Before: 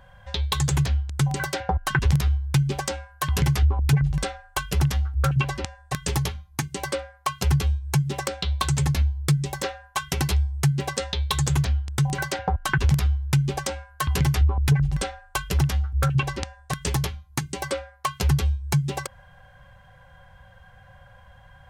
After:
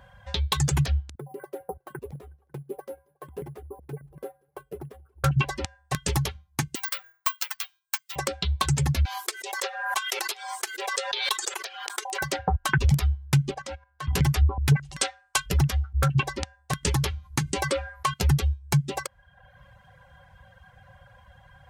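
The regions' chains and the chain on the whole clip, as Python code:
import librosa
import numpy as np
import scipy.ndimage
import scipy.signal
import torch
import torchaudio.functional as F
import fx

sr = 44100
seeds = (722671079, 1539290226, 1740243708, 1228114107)

y = fx.chain(x, sr, fx.bandpass_q(hz=430.0, q=3.3),
    fx.resample_bad(factor=4, down='none', up='hold'),
    fx.echo_warbled(ms=183, feedback_pct=60, rate_hz=2.8, cents=74, wet_db=-21.5), at=(1.15, 5.24))
y = fx.chain(y, sr, fx.highpass(hz=1100.0, slope=24),
    fx.resample_bad(factor=2, down='filtered', up='zero_stuff'), at=(6.75, 8.16))
y = fx.chain(y, sr, fx.brickwall_highpass(low_hz=340.0),
    fx.low_shelf(hz=470.0, db=-9.5),
    fx.pre_swell(db_per_s=42.0), at=(9.05, 12.22))
y = fx.chain(y, sr, fx.level_steps(step_db=11),
    fx.air_absorb(metres=68.0), at=(13.51, 14.13))
y = fx.chain(y, sr, fx.lowpass(hz=8500.0, slope=12),
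    fx.tilt_eq(slope=3.0), at=(14.76, 15.46))
y = fx.chain(y, sr, fx.lowpass(hz=12000.0, slope=12),
    fx.peak_eq(hz=690.0, db=-5.5, octaves=0.28),
    fx.env_flatten(amount_pct=50), at=(16.83, 18.14))
y = scipy.signal.sosfilt(scipy.signal.butter(2, 42.0, 'highpass', fs=sr, output='sos'), y)
y = fx.dereverb_blind(y, sr, rt60_s=0.72)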